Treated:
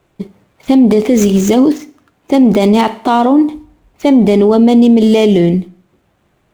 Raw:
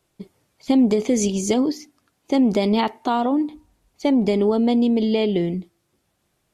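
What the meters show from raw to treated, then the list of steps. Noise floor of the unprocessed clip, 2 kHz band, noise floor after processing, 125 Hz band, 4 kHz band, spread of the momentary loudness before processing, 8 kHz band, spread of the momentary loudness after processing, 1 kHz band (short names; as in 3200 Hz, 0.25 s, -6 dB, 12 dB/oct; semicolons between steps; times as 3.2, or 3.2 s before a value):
-71 dBFS, +9.0 dB, -59 dBFS, +12.0 dB, +7.0 dB, 8 LU, n/a, 10 LU, +9.5 dB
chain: median filter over 9 samples; Schroeder reverb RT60 0.48 s, combs from 27 ms, DRR 17 dB; maximiser +14.5 dB; gain -1 dB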